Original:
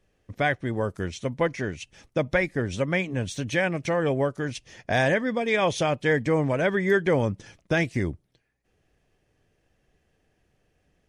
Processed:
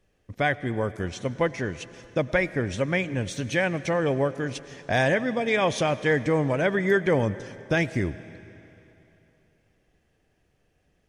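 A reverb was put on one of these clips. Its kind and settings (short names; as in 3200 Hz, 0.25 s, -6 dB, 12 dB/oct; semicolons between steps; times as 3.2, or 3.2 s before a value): digital reverb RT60 3.1 s, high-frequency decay 0.95×, pre-delay 60 ms, DRR 15.5 dB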